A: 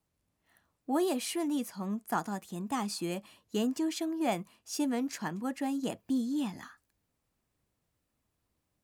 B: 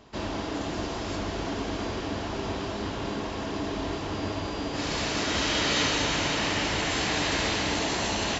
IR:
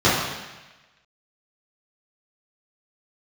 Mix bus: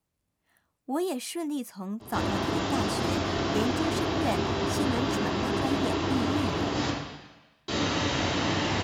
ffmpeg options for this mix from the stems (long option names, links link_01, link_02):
-filter_complex "[0:a]volume=0dB[link_01];[1:a]acrossover=split=370|1200[link_02][link_03][link_04];[link_02]acompressor=threshold=-40dB:ratio=4[link_05];[link_03]acompressor=threshold=-42dB:ratio=4[link_06];[link_04]acompressor=threshold=-36dB:ratio=4[link_07];[link_05][link_06][link_07]amix=inputs=3:normalize=0,adelay=2000,volume=-3dB,asplit=3[link_08][link_09][link_10];[link_08]atrim=end=6.9,asetpts=PTS-STARTPTS,afade=type=out:start_time=6.896:duration=0.004:curve=hsin[link_11];[link_09]atrim=start=6.9:end=7.68,asetpts=PTS-STARTPTS,volume=0[link_12];[link_10]atrim=start=7.68,asetpts=PTS-STARTPTS,afade=type=in:duration=0.004:curve=hsin[link_13];[link_11][link_12][link_13]concat=n=3:v=0:a=1,asplit=2[link_14][link_15];[link_15]volume=-13.5dB[link_16];[2:a]atrim=start_sample=2205[link_17];[link_16][link_17]afir=irnorm=-1:irlink=0[link_18];[link_01][link_14][link_18]amix=inputs=3:normalize=0"